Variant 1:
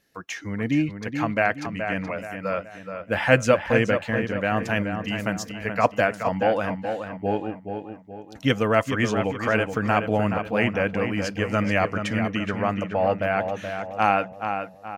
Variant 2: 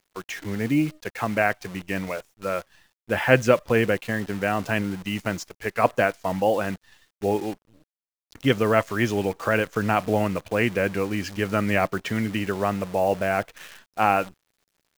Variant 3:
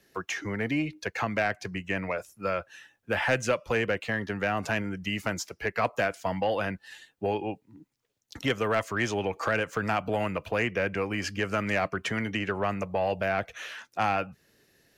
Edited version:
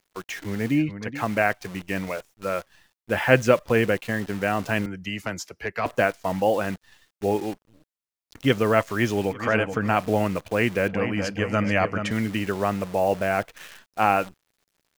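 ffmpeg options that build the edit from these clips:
-filter_complex "[0:a]asplit=3[a][b][c];[1:a]asplit=5[d][e][f][g][h];[d]atrim=end=0.84[i];[a]atrim=start=0.68:end=1.24[j];[e]atrim=start=1.08:end=4.862[k];[2:a]atrim=start=4.858:end=5.862[l];[f]atrim=start=5.858:end=9.48[m];[b]atrim=start=9.24:end=10.03[n];[g]atrim=start=9.79:end=10.882[o];[c]atrim=start=10.878:end=12.112[p];[h]atrim=start=12.108[q];[i][j]acrossfade=d=0.16:c1=tri:c2=tri[r];[r][k]acrossfade=d=0.16:c1=tri:c2=tri[s];[s][l]acrossfade=d=0.004:c1=hsin:c2=hsin[t];[t][m]acrossfade=d=0.004:c1=hsin:c2=hsin[u];[u][n]acrossfade=d=0.24:c1=tri:c2=tri[v];[v][o]acrossfade=d=0.24:c1=tri:c2=tri[w];[w][p]acrossfade=d=0.004:c1=hsin:c2=hsin[x];[x][q]acrossfade=d=0.004:c1=hsin:c2=hsin"

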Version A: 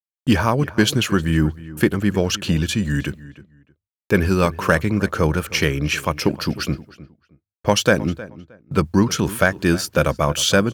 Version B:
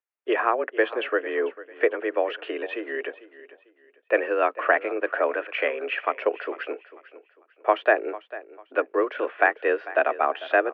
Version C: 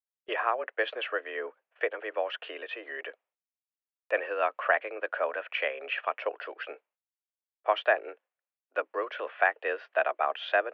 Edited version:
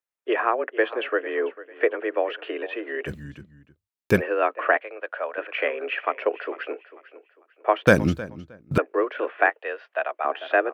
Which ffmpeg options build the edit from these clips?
-filter_complex "[0:a]asplit=2[a][b];[2:a]asplit=2[c][d];[1:a]asplit=5[e][f][g][h][i];[e]atrim=end=3.15[j];[a]atrim=start=3.05:end=4.22[k];[f]atrim=start=4.12:end=4.772[l];[c]atrim=start=4.768:end=5.382[m];[g]atrim=start=5.378:end=7.872[n];[b]atrim=start=7.868:end=8.782[o];[h]atrim=start=8.778:end=9.502[p];[d]atrim=start=9.498:end=10.252[q];[i]atrim=start=10.248[r];[j][k]acrossfade=d=0.1:c1=tri:c2=tri[s];[s][l]acrossfade=d=0.1:c1=tri:c2=tri[t];[t][m]acrossfade=d=0.004:c1=hsin:c2=hsin[u];[u][n]acrossfade=d=0.004:c1=hsin:c2=hsin[v];[v][o]acrossfade=d=0.004:c1=hsin:c2=hsin[w];[w][p]acrossfade=d=0.004:c1=hsin:c2=hsin[x];[x][q]acrossfade=d=0.004:c1=hsin:c2=hsin[y];[y][r]acrossfade=d=0.004:c1=hsin:c2=hsin"

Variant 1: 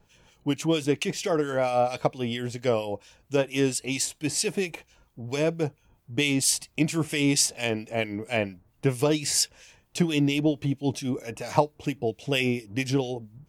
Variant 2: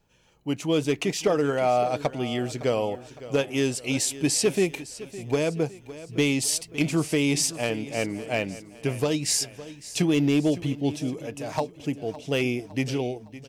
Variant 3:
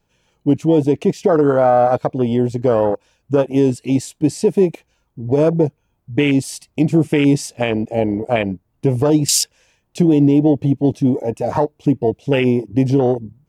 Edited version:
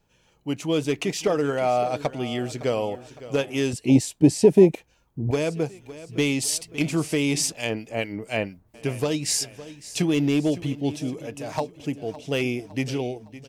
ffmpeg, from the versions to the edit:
-filter_complex "[1:a]asplit=3[a][b][c];[a]atrim=end=3.732[d];[2:a]atrim=start=3.728:end=5.312[e];[b]atrim=start=5.308:end=7.522[f];[0:a]atrim=start=7.518:end=8.742[g];[c]atrim=start=8.738[h];[d][e]acrossfade=d=0.004:c1=hsin:c2=hsin[i];[i][f]acrossfade=d=0.004:c1=hsin:c2=hsin[j];[j][g]acrossfade=d=0.004:c1=hsin:c2=hsin[k];[k][h]acrossfade=d=0.004:c1=hsin:c2=hsin"

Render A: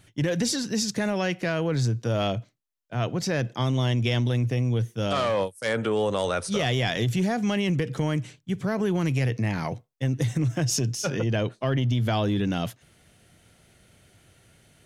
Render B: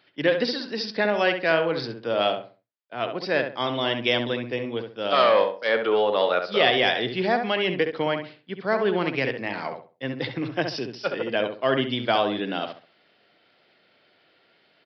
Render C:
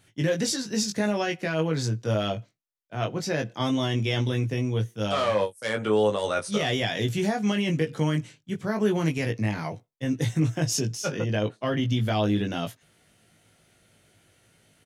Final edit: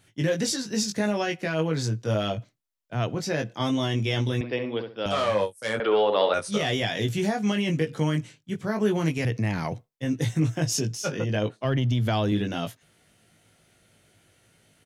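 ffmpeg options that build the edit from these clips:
-filter_complex "[0:a]asplit=3[a][b][c];[1:a]asplit=2[d][e];[2:a]asplit=6[f][g][h][i][j][k];[f]atrim=end=2.382[l];[a]atrim=start=2.378:end=3.152[m];[g]atrim=start=3.148:end=4.412[n];[d]atrim=start=4.408:end=5.062[o];[h]atrim=start=5.058:end=5.802[p];[e]atrim=start=5.798:end=6.342[q];[i]atrim=start=6.338:end=9.252[r];[b]atrim=start=9.248:end=9.892[s];[j]atrim=start=9.888:end=11.652[t];[c]atrim=start=11.648:end=12.322[u];[k]atrim=start=12.318[v];[l][m]acrossfade=d=0.004:c1=hsin:c2=hsin[w];[w][n]acrossfade=d=0.004:c1=hsin:c2=hsin[x];[x][o]acrossfade=d=0.004:c1=hsin:c2=hsin[y];[y][p]acrossfade=d=0.004:c1=hsin:c2=hsin[z];[z][q]acrossfade=d=0.004:c1=hsin:c2=hsin[aa];[aa][r]acrossfade=d=0.004:c1=hsin:c2=hsin[ab];[ab][s]acrossfade=d=0.004:c1=hsin:c2=hsin[ac];[ac][t]acrossfade=d=0.004:c1=hsin:c2=hsin[ad];[ad][u]acrossfade=d=0.004:c1=hsin:c2=hsin[ae];[ae][v]acrossfade=d=0.004:c1=hsin:c2=hsin"

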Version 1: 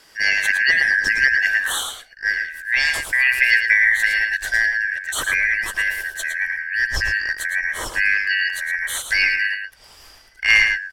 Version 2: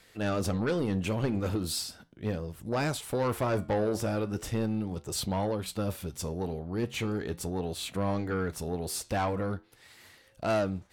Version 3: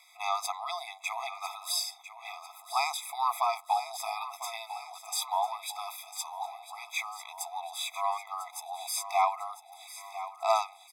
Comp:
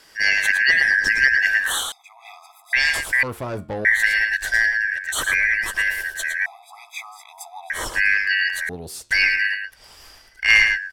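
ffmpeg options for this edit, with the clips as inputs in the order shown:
-filter_complex "[2:a]asplit=2[a][b];[1:a]asplit=2[c][d];[0:a]asplit=5[e][f][g][h][i];[e]atrim=end=1.922[j];[a]atrim=start=1.918:end=2.732[k];[f]atrim=start=2.728:end=3.232[l];[c]atrim=start=3.228:end=3.852[m];[g]atrim=start=3.848:end=6.462[n];[b]atrim=start=6.458:end=7.702[o];[h]atrim=start=7.698:end=8.692[p];[d]atrim=start=8.688:end=9.112[q];[i]atrim=start=9.108[r];[j][k]acrossfade=d=0.004:c1=hsin:c2=hsin[s];[s][l]acrossfade=d=0.004:c1=hsin:c2=hsin[t];[t][m]acrossfade=d=0.004:c1=hsin:c2=hsin[u];[u][n]acrossfade=d=0.004:c1=hsin:c2=hsin[v];[v][o]acrossfade=d=0.004:c1=hsin:c2=hsin[w];[w][p]acrossfade=d=0.004:c1=hsin:c2=hsin[x];[x][q]acrossfade=d=0.004:c1=hsin:c2=hsin[y];[y][r]acrossfade=d=0.004:c1=hsin:c2=hsin"

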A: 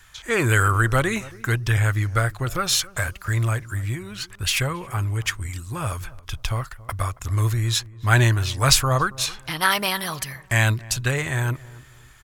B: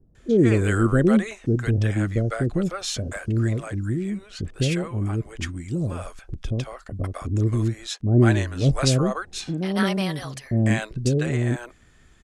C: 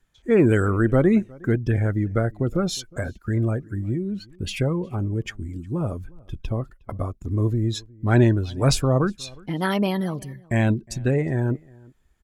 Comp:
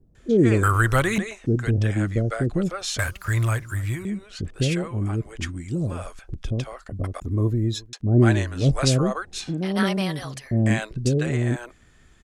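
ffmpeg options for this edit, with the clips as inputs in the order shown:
-filter_complex "[0:a]asplit=2[a][b];[1:a]asplit=4[c][d][e][f];[c]atrim=end=0.632[g];[a]atrim=start=0.628:end=1.182[h];[d]atrim=start=1.178:end=2.992[i];[b]atrim=start=2.988:end=4.052[j];[e]atrim=start=4.048:end=7.202[k];[2:a]atrim=start=7.198:end=7.932[l];[f]atrim=start=7.928[m];[g][h]acrossfade=d=0.004:c1=hsin:c2=hsin[n];[n][i]acrossfade=d=0.004:c1=hsin:c2=hsin[o];[o][j]acrossfade=d=0.004:c1=hsin:c2=hsin[p];[p][k]acrossfade=d=0.004:c1=hsin:c2=hsin[q];[q][l]acrossfade=d=0.004:c1=hsin:c2=hsin[r];[r][m]acrossfade=d=0.004:c1=hsin:c2=hsin"

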